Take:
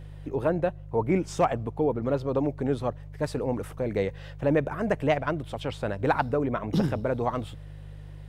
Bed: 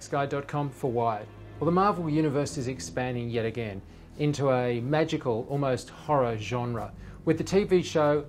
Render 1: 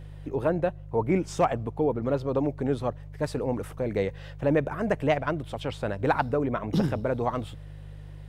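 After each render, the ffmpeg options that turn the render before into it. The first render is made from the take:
-af anull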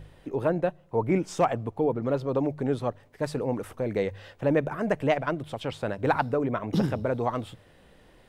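-af "bandreject=f=50:t=h:w=4,bandreject=f=100:t=h:w=4,bandreject=f=150:t=h:w=4"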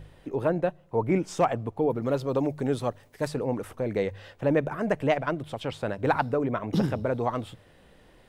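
-filter_complex "[0:a]asettb=1/sr,asplit=3[a][b][c];[a]atrim=end=1.904[d];[b]atrim=start=1.9:end=3.28,asetpts=PTS-STARTPTS,afade=t=in:d=0.004:c=qsin,afade=t=out:st=1.376:d=0.004:c=qsin,highshelf=f=4.1k:g=10[e];[c]atrim=start=3.276[f];[d][e]acrossfade=d=0.004:c1=hsin:c2=qsin[g];[g][f]acrossfade=d=0.004:c1=qsin:c2=hsin"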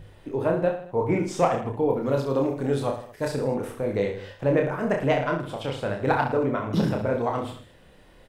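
-filter_complex "[0:a]asplit=2[a][b];[b]adelay=28,volume=-12dB[c];[a][c]amix=inputs=2:normalize=0,aecho=1:1:30|66|109.2|161|223.2:0.631|0.398|0.251|0.158|0.1"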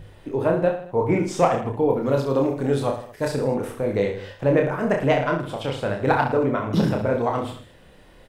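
-af "volume=3dB"

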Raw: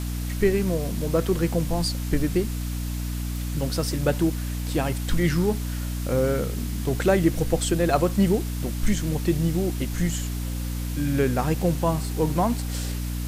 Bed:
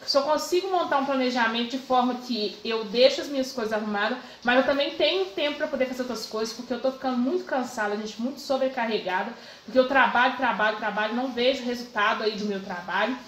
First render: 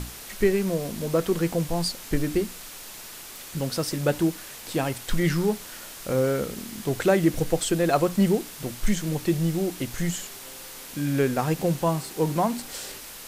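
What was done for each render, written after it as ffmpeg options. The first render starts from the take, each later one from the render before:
-af "bandreject=f=60:t=h:w=6,bandreject=f=120:t=h:w=6,bandreject=f=180:t=h:w=6,bandreject=f=240:t=h:w=6,bandreject=f=300:t=h:w=6"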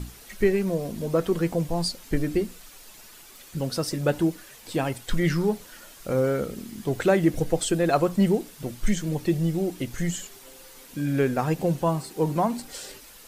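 -af "afftdn=nr=9:nf=-41"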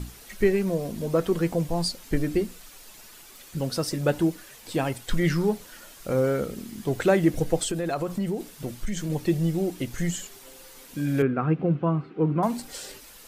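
-filter_complex "[0:a]asettb=1/sr,asplit=3[a][b][c];[a]atrim=end=7.634[d];[b]atrim=start=7.63:end=9.1,asetpts=PTS-STARTPTS,afade=t=in:d=0.004:c=qsin,afade=t=out:st=1.466:d=0.004:c=qsin,acompressor=threshold=-24dB:ratio=5:attack=3.2:release=140:knee=1:detection=peak[e];[c]atrim=start=9.096[f];[d][e]acrossfade=d=0.004:c1=hsin:c2=qsin[g];[g][f]acrossfade=d=0.004:c1=qsin:c2=hsin,asettb=1/sr,asplit=3[h][i][j];[h]atrim=end=11.224[k];[i]atrim=start=11.22:end=12.43,asetpts=PTS-STARTPTS,afade=t=in:d=0.004:c=qsin,afade=t=out:st=1.206:d=0.004:c=qsin,highpass=100,equalizer=f=150:t=q:w=4:g=4,equalizer=f=300:t=q:w=4:g=4,equalizer=f=590:t=q:w=4:g=-6,equalizer=f=880:t=q:w=4:g=-9,equalizer=f=1.3k:t=q:w=4:g=6,equalizer=f=1.8k:t=q:w=4:g=-7,lowpass=f=2.4k:w=0.5412,lowpass=f=2.4k:w=1.3066[l];[j]atrim=start=12.426[m];[k][l]acrossfade=d=0.004:c1=hsin:c2=qsin[n];[n][m]acrossfade=d=0.004:c1=qsin:c2=hsin"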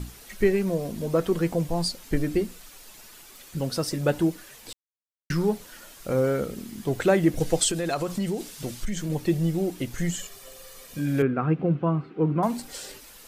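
-filter_complex "[0:a]asettb=1/sr,asplit=3[a][b][c];[a]atrim=end=7.404[d];[b]atrim=start=7.4:end=8.85,asetpts=PTS-STARTPTS,afade=t=in:d=0.004:c=qsin,afade=t=out:st=1.446:d=0.004:c=qsin,equalizer=f=5.7k:w=0.43:g=7.5[e];[c]atrim=start=8.846[f];[d][e]acrossfade=d=0.004:c1=hsin:c2=qsin[g];[g][f]acrossfade=d=0.004:c1=qsin:c2=hsin,asettb=1/sr,asplit=3[h][i][j];[h]atrim=end=10.184[k];[i]atrim=start=10.18:end=10.99,asetpts=PTS-STARTPTS,afade=t=in:d=0.004:c=qsin,afade=t=out:st=0.806:d=0.004:c=qsin,aecho=1:1:1.7:0.61,atrim=end_sample=35721[l];[j]atrim=start=10.986[m];[k][l]acrossfade=d=0.004:c1=hsin:c2=qsin[n];[n][m]acrossfade=d=0.004:c1=qsin:c2=hsin,asplit=3[o][p][q];[o]atrim=end=4.73,asetpts=PTS-STARTPTS,afade=t=out:st=4.726:d=0.004:c=hsin[r];[p]atrim=start=4.73:end=5.3,asetpts=PTS-STARTPTS,volume=0[s];[q]atrim=start=5.3,asetpts=PTS-STARTPTS,afade=t=in:d=0.004:c=hsin[t];[r][s][t]concat=n=3:v=0:a=1"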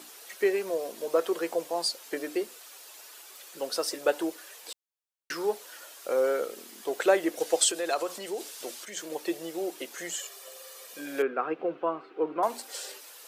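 -af "highpass=f=400:w=0.5412,highpass=f=400:w=1.3066,equalizer=f=2.1k:w=5:g=-2.5"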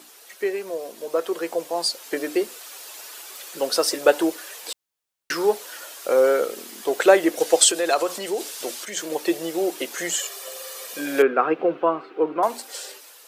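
-af "dynaudnorm=f=570:g=7:m=11.5dB"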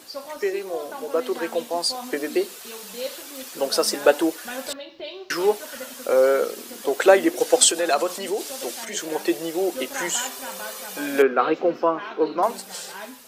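-filter_complex "[1:a]volume=-13dB[a];[0:a][a]amix=inputs=2:normalize=0"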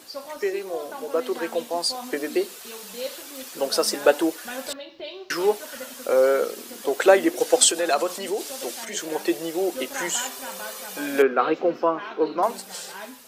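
-af "volume=-1dB"

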